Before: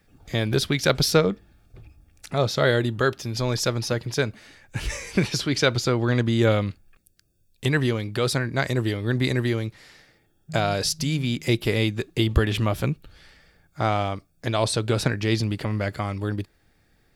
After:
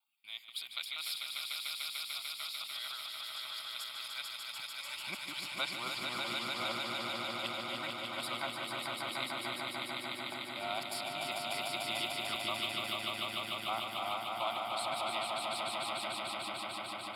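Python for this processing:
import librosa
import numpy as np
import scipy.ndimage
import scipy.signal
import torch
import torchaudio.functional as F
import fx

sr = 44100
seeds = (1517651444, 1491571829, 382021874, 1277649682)

y = fx.local_reverse(x, sr, ms=240.0)
y = fx.filter_sweep_highpass(y, sr, from_hz=2400.0, to_hz=600.0, start_s=3.95, end_s=4.72, q=0.72)
y = fx.fixed_phaser(y, sr, hz=1700.0, stages=6)
y = fx.echo_swell(y, sr, ms=148, loudest=5, wet_db=-4)
y = F.gain(torch.from_numpy(y), -9.0).numpy()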